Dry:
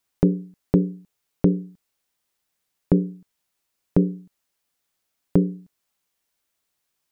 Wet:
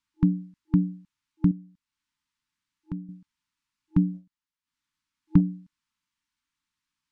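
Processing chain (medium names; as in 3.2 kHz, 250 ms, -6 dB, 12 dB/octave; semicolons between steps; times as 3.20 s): FFT band-reject 320–860 Hz; 1.51–3.09 s: compression 1.5:1, threshold -51 dBFS, peak gain reduction 13.5 dB; 4.14–5.41 s: transient shaper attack +4 dB, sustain -9 dB; distance through air 77 m; trim -2.5 dB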